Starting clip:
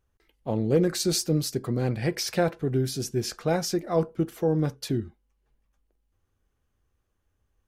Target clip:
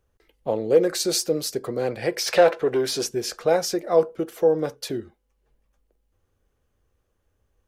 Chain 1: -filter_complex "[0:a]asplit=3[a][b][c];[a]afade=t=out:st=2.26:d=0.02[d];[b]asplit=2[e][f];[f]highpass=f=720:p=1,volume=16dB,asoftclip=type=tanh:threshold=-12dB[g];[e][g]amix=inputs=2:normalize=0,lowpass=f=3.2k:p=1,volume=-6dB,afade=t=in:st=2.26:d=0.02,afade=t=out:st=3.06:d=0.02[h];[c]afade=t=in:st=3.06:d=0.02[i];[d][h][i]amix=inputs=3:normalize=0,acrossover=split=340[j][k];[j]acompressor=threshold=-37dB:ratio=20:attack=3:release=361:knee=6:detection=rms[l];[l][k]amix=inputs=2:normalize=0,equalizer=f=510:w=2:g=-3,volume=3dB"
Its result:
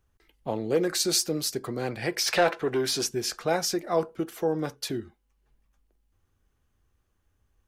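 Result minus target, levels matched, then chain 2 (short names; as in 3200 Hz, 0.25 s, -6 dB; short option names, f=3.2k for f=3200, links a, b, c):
500 Hz band -3.0 dB
-filter_complex "[0:a]asplit=3[a][b][c];[a]afade=t=out:st=2.26:d=0.02[d];[b]asplit=2[e][f];[f]highpass=f=720:p=1,volume=16dB,asoftclip=type=tanh:threshold=-12dB[g];[e][g]amix=inputs=2:normalize=0,lowpass=f=3.2k:p=1,volume=-6dB,afade=t=in:st=2.26:d=0.02,afade=t=out:st=3.06:d=0.02[h];[c]afade=t=in:st=3.06:d=0.02[i];[d][h][i]amix=inputs=3:normalize=0,acrossover=split=340[j][k];[j]acompressor=threshold=-37dB:ratio=20:attack=3:release=361:knee=6:detection=rms[l];[l][k]amix=inputs=2:normalize=0,equalizer=f=510:w=2:g=6.5,volume=3dB"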